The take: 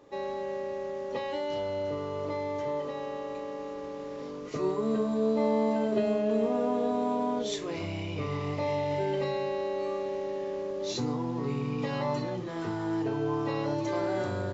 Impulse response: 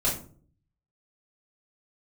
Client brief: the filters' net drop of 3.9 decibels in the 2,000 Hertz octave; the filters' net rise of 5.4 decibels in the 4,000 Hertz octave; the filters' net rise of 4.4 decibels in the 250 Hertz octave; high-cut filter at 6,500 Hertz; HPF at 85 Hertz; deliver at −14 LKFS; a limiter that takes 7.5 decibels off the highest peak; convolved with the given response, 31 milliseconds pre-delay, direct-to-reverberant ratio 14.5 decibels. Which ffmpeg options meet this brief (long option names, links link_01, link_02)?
-filter_complex "[0:a]highpass=85,lowpass=6500,equalizer=frequency=250:width_type=o:gain=5.5,equalizer=frequency=2000:width_type=o:gain=-7.5,equalizer=frequency=4000:width_type=o:gain=9,alimiter=limit=-21.5dB:level=0:latency=1,asplit=2[link_01][link_02];[1:a]atrim=start_sample=2205,adelay=31[link_03];[link_02][link_03]afir=irnorm=-1:irlink=0,volume=-24dB[link_04];[link_01][link_04]amix=inputs=2:normalize=0,volume=16.5dB"